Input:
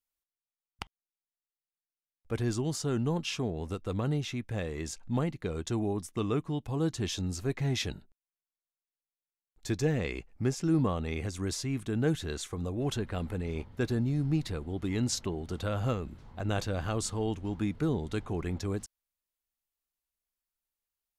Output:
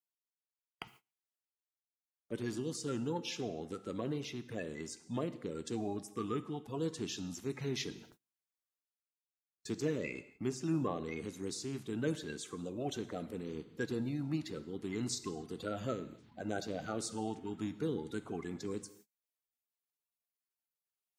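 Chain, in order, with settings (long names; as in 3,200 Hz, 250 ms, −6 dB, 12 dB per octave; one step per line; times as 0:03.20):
spectral magnitudes quantised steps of 30 dB
high-pass filter 150 Hz 12 dB per octave
reversed playback
upward compression, threshold −43 dBFS
reversed playback
reverb whose tail is shaped and stops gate 300 ms falling, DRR 11.5 dB
noise gate −55 dBFS, range −26 dB
level −5.5 dB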